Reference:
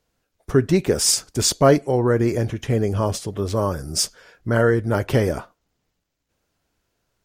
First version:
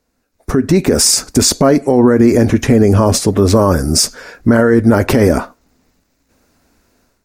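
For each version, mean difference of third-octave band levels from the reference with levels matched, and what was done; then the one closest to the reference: 3.5 dB: thirty-one-band EQ 125 Hz -8 dB, 250 Hz +9 dB, 3150 Hz -9 dB; compressor 4:1, threshold -19 dBFS, peak gain reduction 9.5 dB; limiter -17 dBFS, peak gain reduction 7.5 dB; AGC gain up to 11.5 dB; gain +4.5 dB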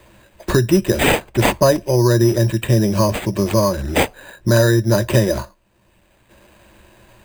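8.0 dB: ripple EQ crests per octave 1.3, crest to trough 14 dB; careless resampling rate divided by 8×, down none, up hold; bell 3000 Hz -3.5 dB 0.28 oct; three-band squash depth 70%; gain +1 dB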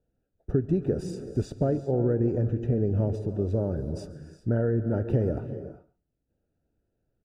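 10.5 dB: compressor, threshold -18 dBFS, peak gain reduction 9 dB; running mean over 41 samples; echo 0.139 s -20 dB; non-linear reverb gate 0.42 s rising, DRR 11 dB; gain -1 dB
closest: first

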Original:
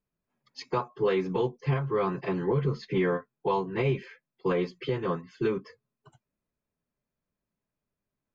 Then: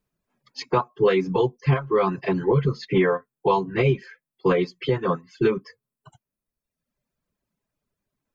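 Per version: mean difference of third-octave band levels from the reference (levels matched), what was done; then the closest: 3.0 dB: reverb removal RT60 1.2 s; gain +7.5 dB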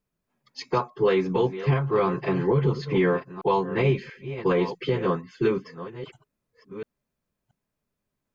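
1.5 dB: reverse delay 0.683 s, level -12 dB; gain +4.5 dB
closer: second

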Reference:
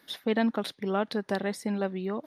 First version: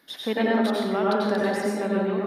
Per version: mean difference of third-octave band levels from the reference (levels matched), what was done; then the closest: 7.5 dB: notches 50/100/150/200 Hz; plate-style reverb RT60 1.4 s, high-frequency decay 0.45×, pre-delay 80 ms, DRR -5 dB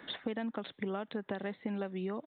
5.0 dB: compressor, threshold -36 dBFS, peak gain reduction 14 dB; downsampling 8000 Hz; three-band squash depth 40%; gain +2 dB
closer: second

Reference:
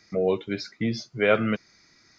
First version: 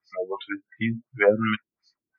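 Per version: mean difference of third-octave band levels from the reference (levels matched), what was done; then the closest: 9.0 dB: LFO low-pass sine 2.8 Hz 280–4000 Hz; spectral noise reduction 30 dB; bell 1000 Hz +8 dB 1.3 oct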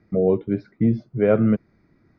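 5.5 dB: LPF 2000 Hz 12 dB/oct; tilt shelf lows +10 dB, about 750 Hz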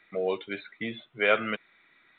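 4.5 dB: HPF 690 Hz 6 dB/oct; high shelf 2200 Hz +3 dB; µ-law 64 kbps 8000 Hz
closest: third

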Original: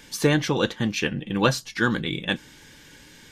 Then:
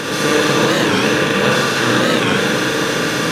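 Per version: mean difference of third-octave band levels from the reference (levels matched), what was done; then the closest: 15.0 dB: per-bin compression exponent 0.2; low shelf 88 Hz -10 dB; Schroeder reverb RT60 2.1 s, combs from 33 ms, DRR -4.5 dB; record warp 45 rpm, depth 160 cents; gain -3.5 dB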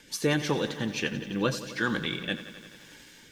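5.5 dB: low shelf 180 Hz -6.5 dB; in parallel at -3 dB: limiter -15 dBFS, peak gain reduction 9 dB; on the sum: rotary speaker horn 5.5 Hz, later 1 Hz, at 0.33; lo-fi delay 87 ms, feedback 80%, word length 8-bit, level -14 dB; gain -6 dB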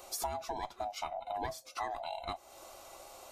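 11.0 dB: band-swap scrambler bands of 500 Hz; bell 2700 Hz -14.5 dB 2.9 oct; compressor 4:1, threshold -41 dBFS, peak gain reduction 17 dB; low shelf 340 Hz -6 dB; gain +5 dB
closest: second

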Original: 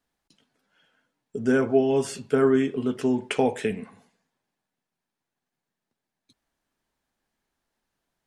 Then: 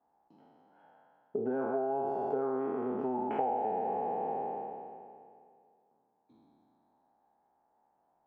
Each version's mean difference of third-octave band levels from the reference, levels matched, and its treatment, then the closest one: 9.5 dB: spectral trails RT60 2.31 s; synth low-pass 820 Hz, resonance Q 6.6; compressor 8:1, threshold -29 dBFS, peak gain reduction 20.5 dB; HPF 250 Hz 6 dB/oct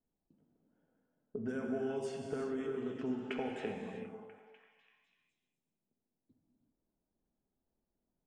7.0 dB: low-pass opened by the level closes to 500 Hz, open at -18 dBFS; compressor 6:1, threshold -34 dBFS, peak gain reduction 17.5 dB; delay with a stepping band-pass 0.247 s, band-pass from 390 Hz, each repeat 0.7 oct, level -8.5 dB; non-linear reverb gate 0.41 s flat, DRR 1.5 dB; gain -4 dB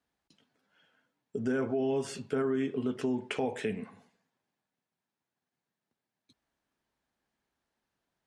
2.5 dB: HPF 47 Hz; high shelf 8900 Hz -10.5 dB; limiter -15.5 dBFS, peak gain reduction 7.5 dB; compressor 2:1, threshold -27 dBFS, peak gain reduction 4.5 dB; gain -2.5 dB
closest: third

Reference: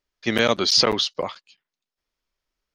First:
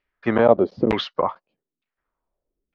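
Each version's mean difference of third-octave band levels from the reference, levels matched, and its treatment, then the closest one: 8.0 dB: LFO low-pass saw down 1.1 Hz 270–2500 Hz; gain +2.5 dB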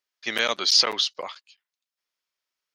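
4.5 dB: HPF 1300 Hz 6 dB/oct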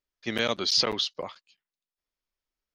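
1.0 dB: dynamic EQ 3500 Hz, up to +4 dB, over -29 dBFS, Q 1; gain -8.5 dB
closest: third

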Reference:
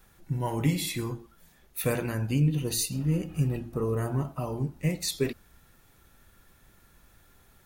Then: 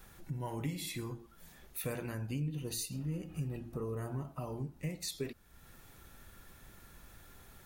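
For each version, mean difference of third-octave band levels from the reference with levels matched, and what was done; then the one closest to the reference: 2.0 dB: compressor 2:1, threshold -50 dBFS, peak gain reduction 16.5 dB; gain +3 dB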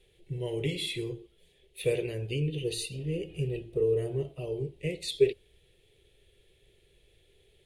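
7.0 dB: EQ curve 140 Hz 0 dB, 250 Hz -13 dB, 410 Hz +14 dB, 920 Hz -14 dB, 1400 Hz -18 dB, 2000 Hz +1 dB, 3200 Hz +11 dB, 5800 Hz -8 dB, 9600 Hz -1 dB, 16000 Hz -23 dB; gain -5.5 dB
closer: first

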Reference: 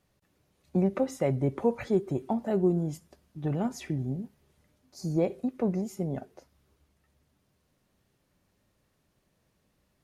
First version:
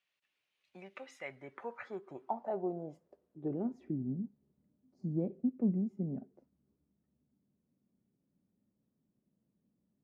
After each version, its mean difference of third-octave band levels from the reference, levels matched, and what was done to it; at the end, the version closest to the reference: 7.5 dB: band-pass sweep 2700 Hz -> 220 Hz, 0.97–4.12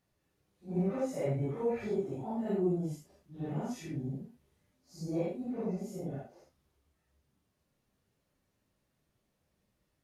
4.5 dB: phase scrambler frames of 0.2 s; gain -6 dB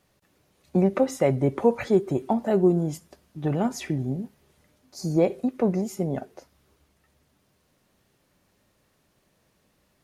1.5 dB: low shelf 190 Hz -6 dB; gain +7 dB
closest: third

